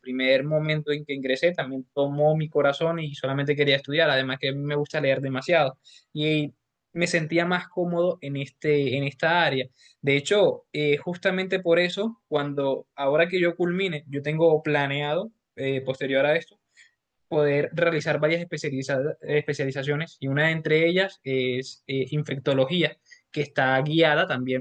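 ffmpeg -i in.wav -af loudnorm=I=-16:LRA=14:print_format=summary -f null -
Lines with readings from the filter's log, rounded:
Input Integrated:    -24.4 LUFS
Input True Peak:      -7.3 dBTP
Input LRA:             1.8 LU
Input Threshold:     -34.6 LUFS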